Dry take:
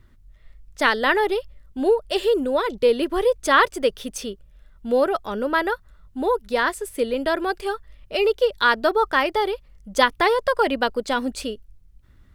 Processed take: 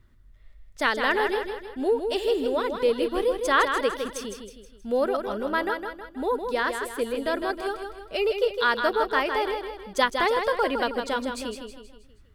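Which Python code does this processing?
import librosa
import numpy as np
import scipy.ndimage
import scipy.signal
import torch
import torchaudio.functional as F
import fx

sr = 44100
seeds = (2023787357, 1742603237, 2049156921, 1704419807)

y = fx.echo_feedback(x, sr, ms=159, feedback_pct=45, wet_db=-6.5)
y = y * librosa.db_to_amplitude(-5.0)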